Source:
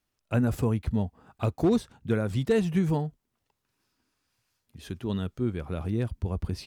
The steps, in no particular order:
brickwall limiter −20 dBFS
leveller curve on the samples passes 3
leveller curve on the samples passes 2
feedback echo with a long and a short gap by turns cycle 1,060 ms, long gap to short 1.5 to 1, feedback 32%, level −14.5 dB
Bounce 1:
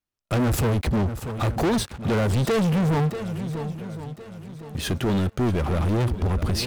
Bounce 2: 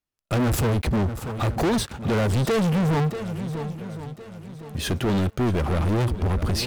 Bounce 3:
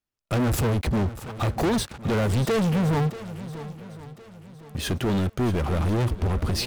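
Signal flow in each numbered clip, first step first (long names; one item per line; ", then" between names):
first leveller curve on the samples, then brickwall limiter, then feedback echo with a long and a short gap by turns, then second leveller curve on the samples
brickwall limiter, then first leveller curve on the samples, then feedback echo with a long and a short gap by turns, then second leveller curve on the samples
second leveller curve on the samples, then brickwall limiter, then first leveller curve on the samples, then feedback echo with a long and a short gap by turns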